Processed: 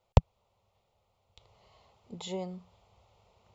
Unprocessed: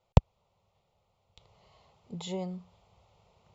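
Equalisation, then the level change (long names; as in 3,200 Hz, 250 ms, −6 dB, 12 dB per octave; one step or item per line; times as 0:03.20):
parametric band 160 Hz −12.5 dB 0.22 octaves
0.0 dB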